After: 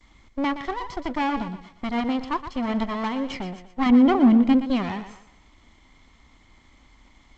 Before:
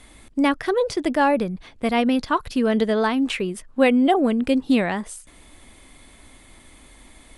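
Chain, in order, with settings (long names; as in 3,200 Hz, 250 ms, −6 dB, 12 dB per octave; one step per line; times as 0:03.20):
lower of the sound and its delayed copy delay 0.95 ms
high-shelf EQ 5,600 Hz −9.5 dB
noise gate with hold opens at −42 dBFS
0:03.86–0:04.68: parametric band 220 Hz +11 dB 1.1 octaves
feedback echo with a high-pass in the loop 120 ms, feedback 37%, high-pass 220 Hz, level −11 dB
level −4.5 dB
G.722 64 kbit/s 16,000 Hz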